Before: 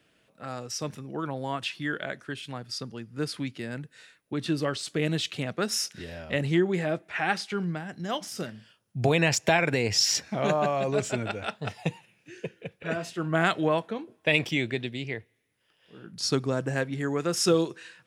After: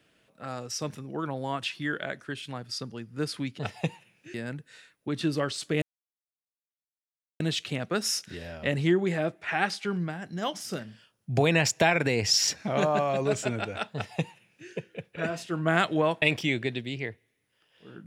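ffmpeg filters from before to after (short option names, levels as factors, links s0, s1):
-filter_complex "[0:a]asplit=5[s0][s1][s2][s3][s4];[s0]atrim=end=3.592[s5];[s1]atrim=start=11.608:end=12.362[s6];[s2]atrim=start=3.588:end=5.07,asetpts=PTS-STARTPTS,afade=t=out:st=1.478:d=0.004:c=hsin,apad=pad_dur=1.58[s7];[s3]atrim=start=5.07:end=13.892,asetpts=PTS-STARTPTS,afade=t=in:d=0.004:c=hsin[s8];[s4]atrim=start=14.298[s9];[s5][s6]acrossfade=d=0.004:c1=hsin:c2=hsin[s10];[s7][s8]concat=n=2:v=0:a=1[s11];[s10][s11]acrossfade=d=0.004:c1=hsin:c2=hsin[s12];[s12][s9]acrossfade=d=0.004:c1=hsin:c2=hsin"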